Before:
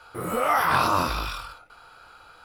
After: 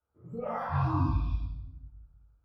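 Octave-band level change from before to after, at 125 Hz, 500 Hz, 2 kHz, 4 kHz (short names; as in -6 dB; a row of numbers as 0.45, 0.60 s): +6.0 dB, -10.0 dB, -19.0 dB, under -20 dB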